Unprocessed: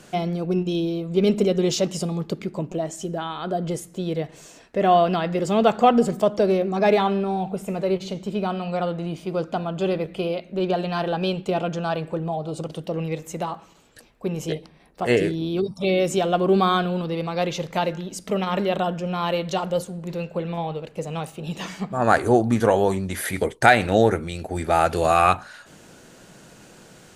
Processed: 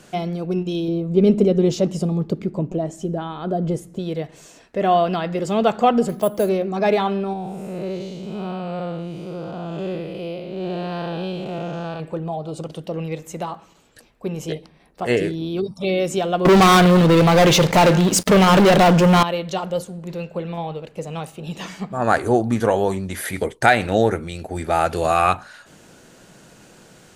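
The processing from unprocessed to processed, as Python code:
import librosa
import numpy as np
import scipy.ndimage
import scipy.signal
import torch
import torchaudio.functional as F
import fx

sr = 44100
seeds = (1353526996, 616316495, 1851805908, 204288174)

y = fx.tilt_shelf(x, sr, db=6.0, hz=810.0, at=(0.88, 3.99))
y = fx.resample_bad(y, sr, factor=4, down='filtered', up='hold', at=(6.09, 6.49))
y = fx.spec_blur(y, sr, span_ms=225.0, at=(7.33, 12.0))
y = fx.leveller(y, sr, passes=5, at=(16.45, 19.23))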